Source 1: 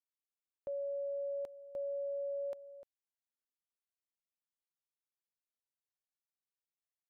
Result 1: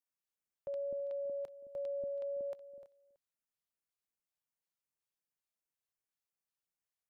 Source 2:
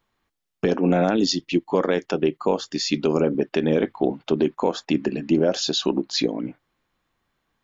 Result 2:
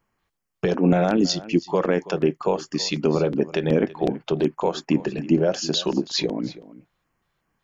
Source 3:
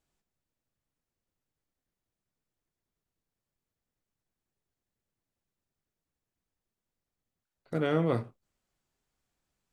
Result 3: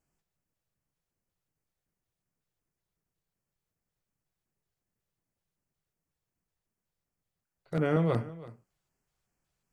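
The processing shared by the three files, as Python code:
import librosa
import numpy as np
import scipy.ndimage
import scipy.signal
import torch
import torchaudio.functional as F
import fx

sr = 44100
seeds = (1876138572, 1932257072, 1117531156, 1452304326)

y = fx.peak_eq(x, sr, hz=160.0, db=4.5, octaves=0.87)
y = fx.filter_lfo_notch(y, sr, shape='square', hz=2.7, low_hz=250.0, high_hz=3700.0, q=1.6)
y = y + 10.0 ** (-18.0 / 20.0) * np.pad(y, (int(328 * sr / 1000.0), 0))[:len(y)]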